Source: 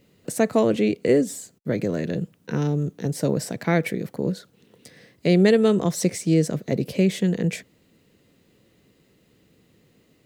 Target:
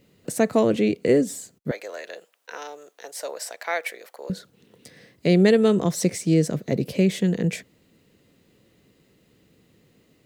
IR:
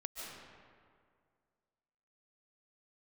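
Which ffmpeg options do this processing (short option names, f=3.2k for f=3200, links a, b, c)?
-filter_complex "[0:a]asettb=1/sr,asplit=3[a][b][c];[a]atrim=end=1.714[d];[b]atrim=start=1.71:end=4.3,asetpts=PTS-STARTPTS,afade=t=in:d=0.004:c=qsin,afade=t=out:st=2.586:d=0.004:c=qsin,highpass=f=610:w=0.5412,highpass=f=610:w=1.3066[e];[c]atrim=start=4.296[f];[d][e]acrossfade=d=0.004:c1=hsin:c2=qsin[g];[g][f]acrossfade=d=0.004:c1=qsin:c2=hsin"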